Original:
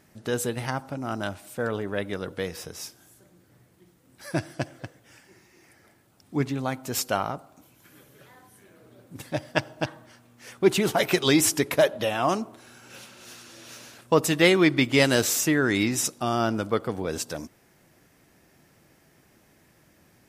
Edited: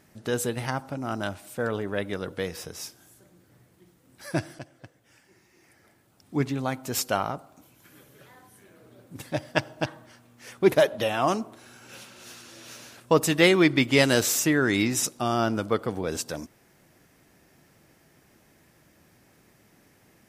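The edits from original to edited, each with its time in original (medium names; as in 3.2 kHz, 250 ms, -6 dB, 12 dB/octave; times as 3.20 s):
4.59–6.37 s: fade in, from -12 dB
10.72–11.73 s: delete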